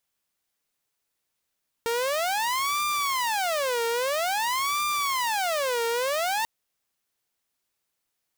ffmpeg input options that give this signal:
ffmpeg -f lavfi -i "aevalsrc='0.0841*(2*mod((826*t-364/(2*PI*0.5)*sin(2*PI*0.5*t)),1)-1)':duration=4.59:sample_rate=44100" out.wav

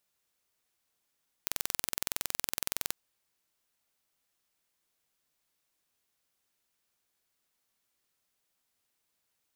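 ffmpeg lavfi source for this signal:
ffmpeg -f lavfi -i "aevalsrc='0.668*eq(mod(n,2042),0)':duration=1.47:sample_rate=44100" out.wav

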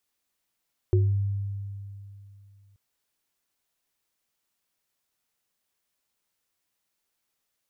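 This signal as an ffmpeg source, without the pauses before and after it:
ffmpeg -f lavfi -i "aevalsrc='0.141*pow(10,-3*t/2.79)*sin(2*PI*99.7*t)+0.1*pow(10,-3*t/0.31)*sin(2*PI*365*t)':duration=1.83:sample_rate=44100" out.wav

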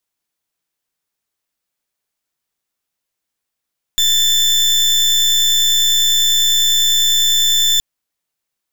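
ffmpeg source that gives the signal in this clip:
ffmpeg -f lavfi -i "aevalsrc='0.211*(2*lt(mod(3530*t,1),0.33)-1)':duration=3.82:sample_rate=44100" out.wav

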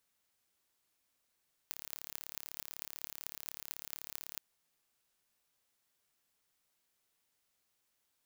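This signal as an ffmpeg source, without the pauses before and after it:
ffmpeg -f lavfi -i "aevalsrc='0.266*eq(mod(n,1225),0)*(0.5+0.5*eq(mod(n,9800),0))':duration=2.69:sample_rate=44100" out.wav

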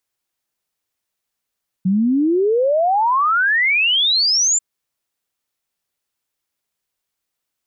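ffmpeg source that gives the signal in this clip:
ffmpeg -f lavfi -i "aevalsrc='0.224*clip(min(t,2.74-t)/0.01,0,1)*sin(2*PI*180*2.74/log(7400/180)*(exp(log(7400/180)*t/2.74)-1))':duration=2.74:sample_rate=44100" out.wav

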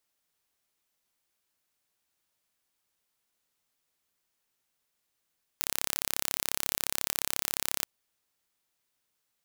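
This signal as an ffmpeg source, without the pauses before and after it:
ffmpeg -f lavfi -i "aevalsrc='0.794*eq(mod(n,1289),0)':duration=2.24:sample_rate=44100" out.wav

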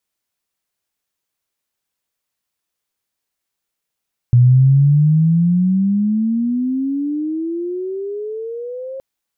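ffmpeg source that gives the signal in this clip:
ffmpeg -f lavfi -i "aevalsrc='pow(10,(-6-19.5*t/4.67)/20)*sin(2*PI*120*4.67/log(540/120)*(exp(log(540/120)*t/4.67)-1))':duration=4.67:sample_rate=44100" out.wav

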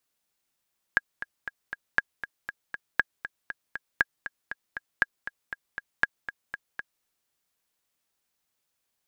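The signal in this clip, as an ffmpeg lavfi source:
ffmpeg -f lavfi -i "aevalsrc='pow(10,(-7-13*gte(mod(t,4*60/237),60/237))/20)*sin(2*PI*1640*mod(t,60/237))*exp(-6.91*mod(t,60/237)/0.03)':duration=6.07:sample_rate=44100" out.wav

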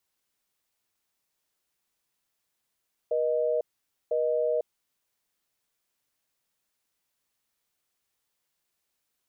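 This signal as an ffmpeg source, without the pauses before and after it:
ffmpeg -f lavfi -i "aevalsrc='0.0501*(sin(2*PI*480*t)+sin(2*PI*620*t))*clip(min(mod(t,1),0.5-mod(t,1))/0.005,0,1)':duration=1.71:sample_rate=44100" out.wav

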